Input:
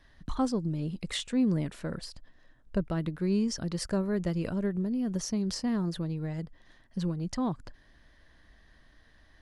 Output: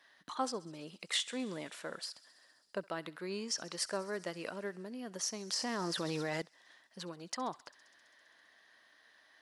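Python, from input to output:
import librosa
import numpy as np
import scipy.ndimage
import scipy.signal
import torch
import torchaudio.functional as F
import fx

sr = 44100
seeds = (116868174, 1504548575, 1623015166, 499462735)

p1 = scipy.signal.sosfilt(scipy.signal.bessel(2, 730.0, 'highpass', norm='mag', fs=sr, output='sos'), x)
p2 = p1 + fx.echo_thinned(p1, sr, ms=66, feedback_pct=85, hz=1100.0, wet_db=-20.5, dry=0)
p3 = fx.env_flatten(p2, sr, amount_pct=100, at=(5.57, 6.42))
y = F.gain(torch.from_numpy(p3), 1.0).numpy()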